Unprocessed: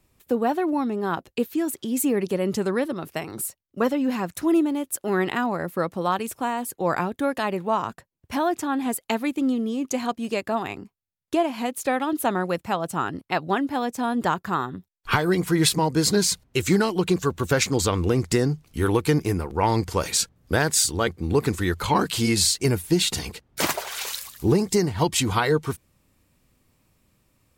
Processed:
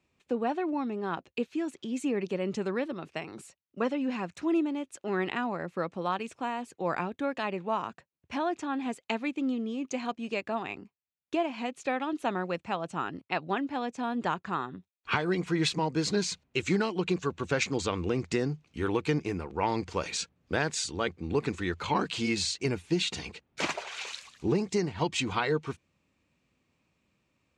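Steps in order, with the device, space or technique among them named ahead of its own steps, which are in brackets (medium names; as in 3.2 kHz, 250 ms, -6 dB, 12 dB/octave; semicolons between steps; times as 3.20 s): car door speaker (cabinet simulation 81–6600 Hz, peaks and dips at 110 Hz -7 dB, 2.5 kHz +6 dB, 5.1 kHz -4 dB); trim -7 dB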